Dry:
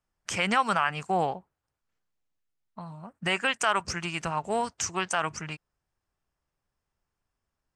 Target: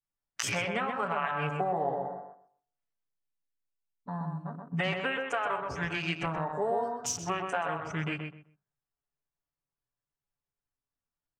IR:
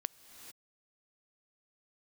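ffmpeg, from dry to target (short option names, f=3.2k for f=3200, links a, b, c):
-filter_complex "[0:a]bandreject=f=48.25:t=h:w=4,bandreject=f=96.5:t=h:w=4,bandreject=f=144.75:t=h:w=4,bandreject=f=193:t=h:w=4,bandreject=f=241.25:t=h:w=4,bandreject=f=289.5:t=h:w=4,bandreject=f=337.75:t=h:w=4,bandreject=f=386:t=h:w=4,bandreject=f=434.25:t=h:w=4,bandreject=f=482.5:t=h:w=4,bandreject=f=530.75:t=h:w=4,bandreject=f=579:t=h:w=4,bandreject=f=627.25:t=h:w=4,bandreject=f=675.5:t=h:w=4,bandreject=f=723.75:t=h:w=4,bandreject=f=772:t=h:w=4,bandreject=f=820.25:t=h:w=4,bandreject=f=868.5:t=h:w=4,bandreject=f=916.75:t=h:w=4,bandreject=f=965:t=h:w=4,bandreject=f=1.01325k:t=h:w=4,bandreject=f=1.0615k:t=h:w=4,bandreject=f=1.10975k:t=h:w=4,bandreject=f=1.158k:t=h:w=4,bandreject=f=1.20625k:t=h:w=4,bandreject=f=1.2545k:t=h:w=4,bandreject=f=1.30275k:t=h:w=4,bandreject=f=1.351k:t=h:w=4,bandreject=f=1.39925k:t=h:w=4,bandreject=f=1.4475k:t=h:w=4,bandreject=f=1.49575k:t=h:w=4,bandreject=f=1.544k:t=h:w=4,bandreject=f=1.59225k:t=h:w=4,bandreject=f=1.6405k:t=h:w=4,bandreject=f=1.68875k:t=h:w=4,bandreject=f=1.737k:t=h:w=4,atempo=0.68,adynamicequalizer=threshold=0.0112:dfrequency=530:dqfactor=0.97:tfrequency=530:tqfactor=0.97:attack=5:release=100:ratio=0.375:range=3:mode=boostabove:tftype=bell,acompressor=threshold=-32dB:ratio=8,afwtdn=0.00794,asplit=2[a][b];[b]adelay=127,lowpass=f=2.3k:p=1,volume=-4dB,asplit=2[c][d];[d]adelay=127,lowpass=f=2.3k:p=1,volume=0.21,asplit=2[e][f];[f]adelay=127,lowpass=f=2.3k:p=1,volume=0.21[g];[a][c][e][g]amix=inputs=4:normalize=0,asplit=2[h][i];[1:a]atrim=start_sample=2205,atrim=end_sample=3087,adelay=7[j];[i][j]afir=irnorm=-1:irlink=0,volume=7.5dB[k];[h][k]amix=inputs=2:normalize=0,volume=-2.5dB"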